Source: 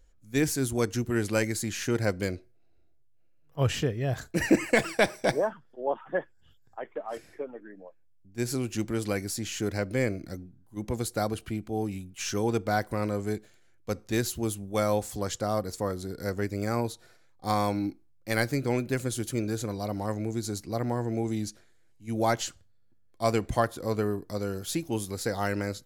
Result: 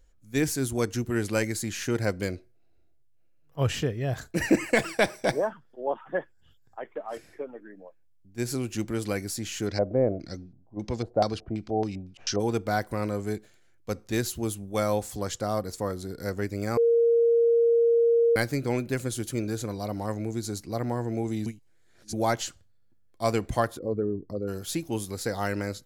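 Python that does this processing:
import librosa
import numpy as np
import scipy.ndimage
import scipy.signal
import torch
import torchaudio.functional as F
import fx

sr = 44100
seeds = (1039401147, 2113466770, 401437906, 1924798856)

y = fx.filter_lfo_lowpass(x, sr, shape='square', hz=fx.line((9.66, 0.97), (12.39, 5.7)), low_hz=670.0, high_hz=5000.0, q=3.0, at=(9.66, 12.39), fade=0.02)
y = fx.envelope_sharpen(y, sr, power=2.0, at=(23.77, 24.47), fade=0.02)
y = fx.edit(y, sr, fx.bleep(start_s=16.77, length_s=1.59, hz=466.0, db=-17.5),
    fx.reverse_span(start_s=21.46, length_s=0.67), tone=tone)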